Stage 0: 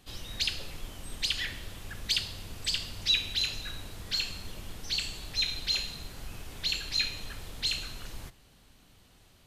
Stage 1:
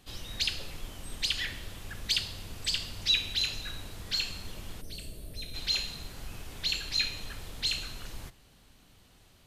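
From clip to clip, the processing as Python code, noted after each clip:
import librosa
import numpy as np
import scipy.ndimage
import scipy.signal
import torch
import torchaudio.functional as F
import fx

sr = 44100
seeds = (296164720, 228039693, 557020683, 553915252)

y = fx.spec_box(x, sr, start_s=4.81, length_s=0.73, low_hz=710.0, high_hz=8100.0, gain_db=-14)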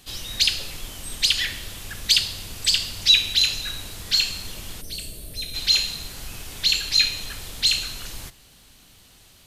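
y = fx.high_shelf(x, sr, hz=2500.0, db=9.5)
y = y * 10.0 ** (4.0 / 20.0)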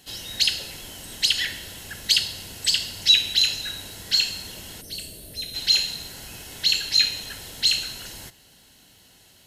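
y = fx.notch_comb(x, sr, f0_hz=1200.0)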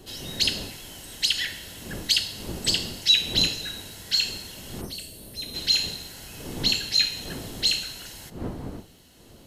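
y = fx.dmg_wind(x, sr, seeds[0], corner_hz=320.0, level_db=-37.0)
y = y * 10.0 ** (-2.5 / 20.0)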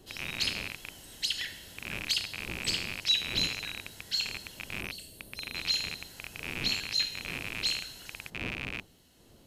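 y = fx.rattle_buzz(x, sr, strikes_db=-42.0, level_db=-15.0)
y = y * 10.0 ** (-8.0 / 20.0)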